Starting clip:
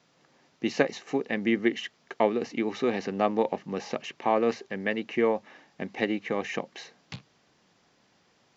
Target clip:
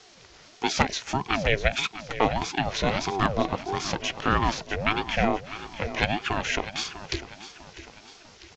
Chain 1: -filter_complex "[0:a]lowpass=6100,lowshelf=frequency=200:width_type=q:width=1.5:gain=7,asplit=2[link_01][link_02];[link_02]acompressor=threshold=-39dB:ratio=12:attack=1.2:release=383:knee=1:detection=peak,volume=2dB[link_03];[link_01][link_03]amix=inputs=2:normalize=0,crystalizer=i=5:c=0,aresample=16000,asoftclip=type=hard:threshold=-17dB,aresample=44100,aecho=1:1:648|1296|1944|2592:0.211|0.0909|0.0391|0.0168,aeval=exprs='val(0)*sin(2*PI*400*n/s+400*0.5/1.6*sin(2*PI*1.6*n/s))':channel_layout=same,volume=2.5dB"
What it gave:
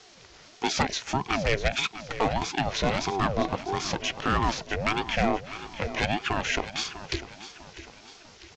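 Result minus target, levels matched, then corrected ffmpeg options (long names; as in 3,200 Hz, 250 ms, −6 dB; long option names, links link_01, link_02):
hard clipping: distortion +17 dB
-filter_complex "[0:a]lowpass=6100,lowshelf=frequency=200:width_type=q:width=1.5:gain=7,asplit=2[link_01][link_02];[link_02]acompressor=threshold=-39dB:ratio=12:attack=1.2:release=383:knee=1:detection=peak,volume=2dB[link_03];[link_01][link_03]amix=inputs=2:normalize=0,crystalizer=i=5:c=0,aresample=16000,asoftclip=type=hard:threshold=-8dB,aresample=44100,aecho=1:1:648|1296|1944|2592:0.211|0.0909|0.0391|0.0168,aeval=exprs='val(0)*sin(2*PI*400*n/s+400*0.5/1.6*sin(2*PI*1.6*n/s))':channel_layout=same,volume=2.5dB"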